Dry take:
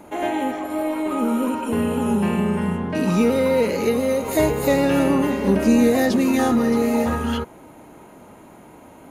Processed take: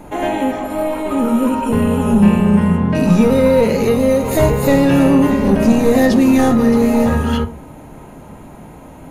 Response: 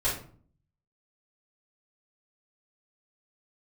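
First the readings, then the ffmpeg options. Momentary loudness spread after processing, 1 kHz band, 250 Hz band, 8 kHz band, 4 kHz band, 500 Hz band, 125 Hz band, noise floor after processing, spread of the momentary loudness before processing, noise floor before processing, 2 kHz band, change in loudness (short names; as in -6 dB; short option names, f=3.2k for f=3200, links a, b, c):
8 LU, +4.5 dB, +6.5 dB, +3.0 dB, +3.5 dB, +5.5 dB, +10.0 dB, -37 dBFS, 7 LU, -45 dBFS, +4.0 dB, +6.5 dB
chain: -filter_complex "[0:a]lowshelf=f=200:g=9.5,acontrast=69,asplit=2[a][b];[1:a]atrim=start_sample=2205,asetrate=74970,aresample=44100[c];[b][c]afir=irnorm=-1:irlink=0,volume=-12dB[d];[a][d]amix=inputs=2:normalize=0,volume=-3dB"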